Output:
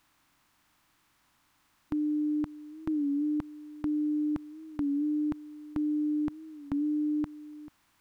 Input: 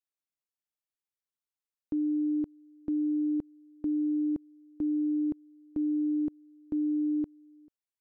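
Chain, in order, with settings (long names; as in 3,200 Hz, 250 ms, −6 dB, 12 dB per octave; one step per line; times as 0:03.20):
compressor on every frequency bin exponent 0.6
drawn EQ curve 140 Hz 0 dB, 450 Hz −11 dB, 1,000 Hz +10 dB
wow of a warped record 33 1/3 rpm, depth 100 cents
level +6.5 dB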